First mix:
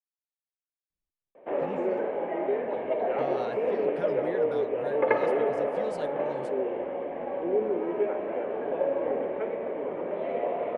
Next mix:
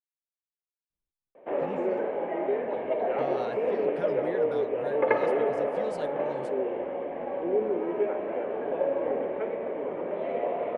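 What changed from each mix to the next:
none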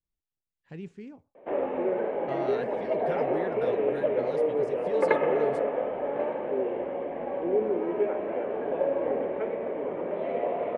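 speech: entry -0.90 s; master: add low shelf 210 Hz +3.5 dB

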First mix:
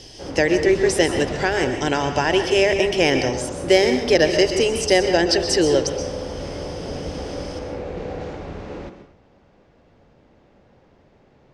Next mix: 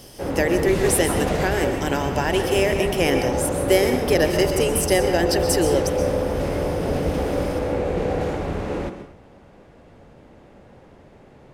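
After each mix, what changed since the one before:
speech -10.0 dB; master: remove ladder low-pass 7000 Hz, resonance 30%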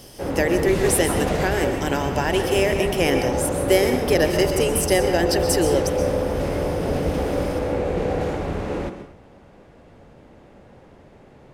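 none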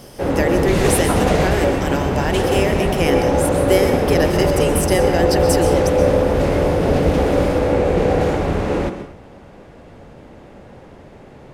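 background +7.0 dB

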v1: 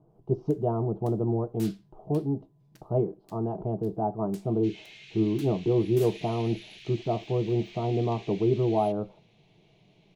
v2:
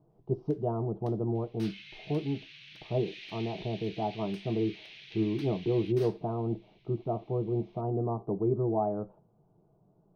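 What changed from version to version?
speech -4.0 dB; second sound: entry -3.00 s; master: add polynomial smoothing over 15 samples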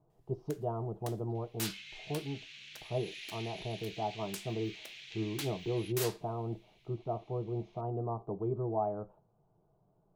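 speech: add bell 240 Hz -9 dB 2.1 oct; first sound +8.5 dB; master: remove polynomial smoothing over 15 samples

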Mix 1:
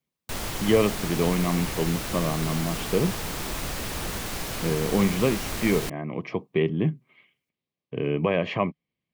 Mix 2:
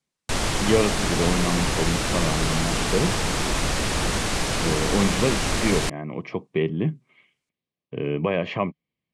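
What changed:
background +8.0 dB; master: add LPF 9600 Hz 24 dB/oct

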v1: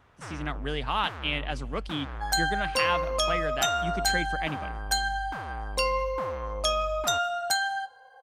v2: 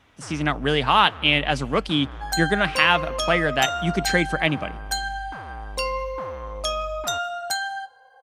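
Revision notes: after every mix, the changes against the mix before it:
speech +11.0 dB; first sound: add LPF 3400 Hz 6 dB/oct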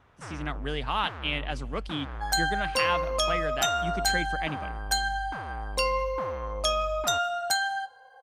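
speech -11.5 dB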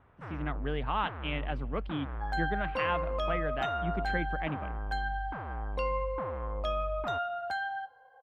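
second sound -3.0 dB; master: add air absorption 500 m

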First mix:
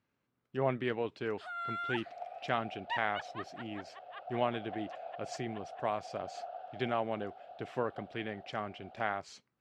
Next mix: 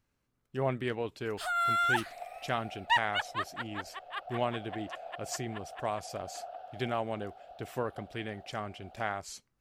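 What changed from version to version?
first sound +10.0 dB; master: remove BPF 130–3800 Hz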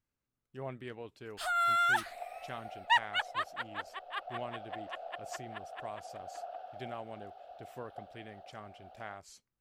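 speech -10.5 dB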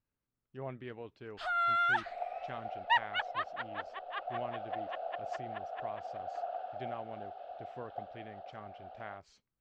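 second sound +5.5 dB; master: add air absorption 190 m

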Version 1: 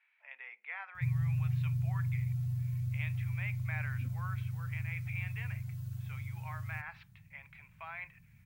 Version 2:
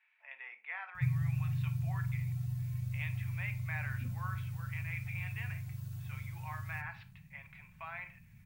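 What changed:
speech -3.5 dB; reverb: on, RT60 0.40 s

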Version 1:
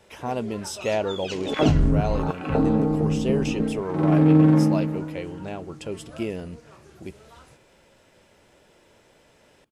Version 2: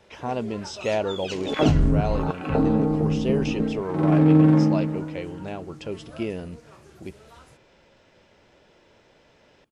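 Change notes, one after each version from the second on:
speech: add LPF 6000 Hz 24 dB/oct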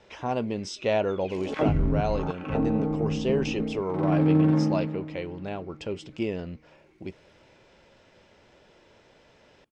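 first sound: add double band-pass 830 Hz, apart 2.8 oct; second sound -5.0 dB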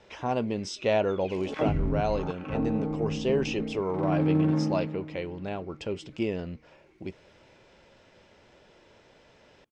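second sound -3.5 dB

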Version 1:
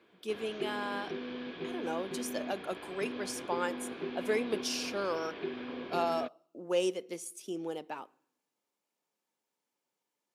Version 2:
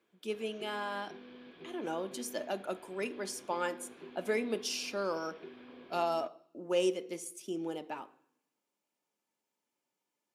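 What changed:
speech: send +6.5 dB; background -11.5 dB

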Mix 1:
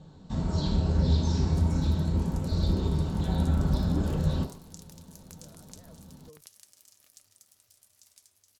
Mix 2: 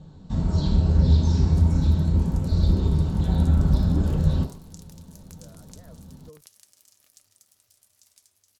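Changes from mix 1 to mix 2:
speech +5.0 dB; first sound: add low shelf 190 Hz +8 dB

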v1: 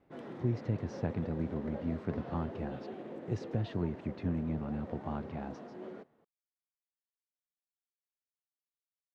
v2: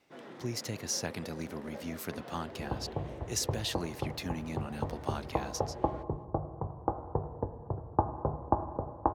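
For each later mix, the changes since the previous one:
speech: remove tape spacing loss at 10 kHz 37 dB; second sound: unmuted; master: add tilt +2.5 dB/oct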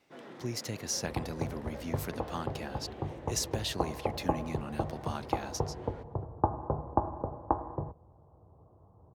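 second sound: entry -1.55 s

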